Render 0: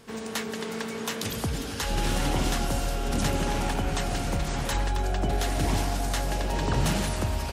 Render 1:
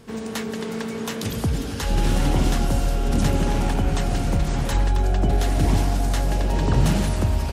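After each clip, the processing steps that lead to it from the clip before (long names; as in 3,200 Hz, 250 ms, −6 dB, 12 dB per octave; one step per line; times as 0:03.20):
low-shelf EQ 440 Hz +8 dB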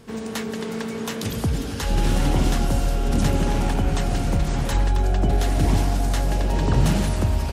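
no processing that can be heard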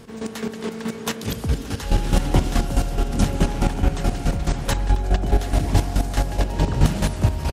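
square-wave tremolo 4.7 Hz, depth 65%, duty 25%
single-tap delay 574 ms −19 dB
level +4.5 dB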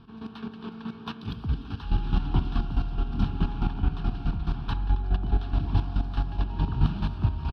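high-frequency loss of the air 210 metres
phaser with its sweep stopped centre 2,000 Hz, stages 6
level −5 dB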